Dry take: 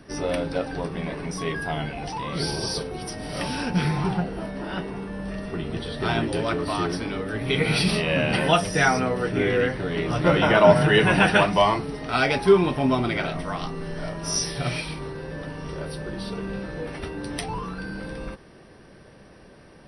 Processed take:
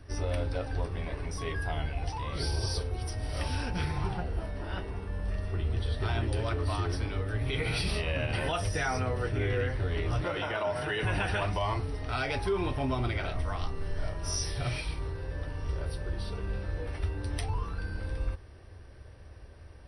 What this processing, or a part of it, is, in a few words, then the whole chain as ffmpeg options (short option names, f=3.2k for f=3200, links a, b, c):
car stereo with a boomy subwoofer: -filter_complex "[0:a]lowshelf=f=120:t=q:w=3:g=12,alimiter=limit=-14dB:level=0:latency=1:release=62,asettb=1/sr,asplit=3[a][b][c];[a]atrim=end=10.244[d];[b]atrim=start=10.24:end=11.03,asetpts=PTS-STARTPTS,afade=t=in:d=0.004:c=qsin,afade=t=out:st=0.786:d=0.004:c=qsin,highpass=f=290:p=1[e];[c]atrim=start=11.026[f];[d][e]acrossfade=d=0.004:c1=hsin:c2=qsin[g];[g][f]acrossfade=d=0.004:c1=qsin:c2=hsin,volume=-7dB"